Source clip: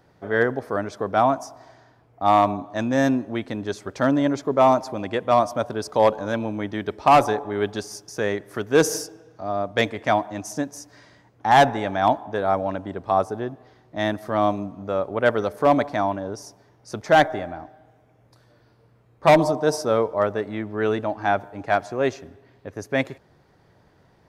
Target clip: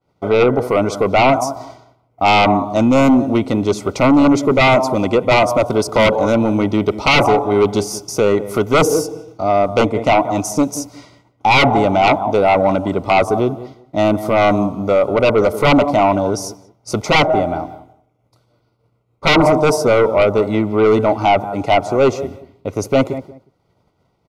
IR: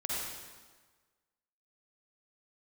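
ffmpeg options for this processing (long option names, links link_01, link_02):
-filter_complex "[0:a]acrossover=split=1400[link_01][link_02];[link_02]acompressor=threshold=-40dB:ratio=6[link_03];[link_01][link_03]amix=inputs=2:normalize=0,agate=range=-33dB:threshold=-45dB:ratio=3:detection=peak,asplit=2[link_04][link_05];[link_05]adelay=182,lowpass=frequency=1300:poles=1,volume=-15.5dB,asplit=2[link_06][link_07];[link_07]adelay=182,lowpass=frequency=1300:poles=1,volume=0.18[link_08];[link_06][link_08]amix=inputs=2:normalize=0[link_09];[link_04][link_09]amix=inputs=2:normalize=0,aeval=exprs='0.531*sin(PI/2*3.55*val(0)/0.531)':channel_layout=same,asuperstop=centerf=1700:order=8:qfactor=3.9,adynamicequalizer=threshold=0.0251:dfrequency=6100:dqfactor=0.7:tfrequency=6100:tqfactor=0.7:attack=5:release=100:ratio=0.375:range=3:mode=boostabove:tftype=highshelf,volume=-1.5dB"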